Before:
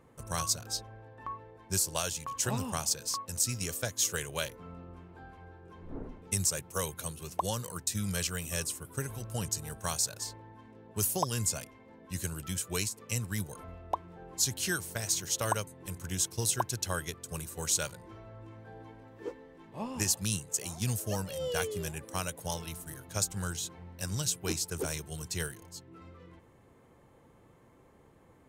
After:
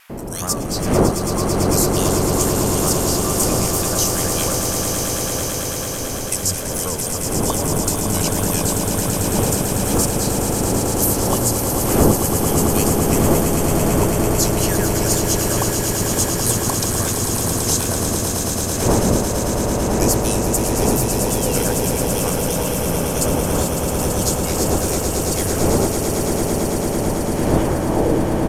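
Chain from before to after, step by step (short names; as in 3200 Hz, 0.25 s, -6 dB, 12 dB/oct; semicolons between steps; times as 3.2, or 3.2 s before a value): wind noise 450 Hz -30 dBFS; notch 3800 Hz, Q 10; in parallel at +1.5 dB: compressor, threshold -33 dBFS, peak gain reduction 19 dB; on the sum: requantised 10-bit, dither triangular; bands offset in time highs, lows 0.1 s, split 1600 Hz; wow and flutter 120 cents; low-pass sweep 13000 Hz -> 250 Hz, 27.27–28.28; on a send: swelling echo 0.111 s, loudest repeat 8, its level -8 dB; on the sum: gain +2.5 dB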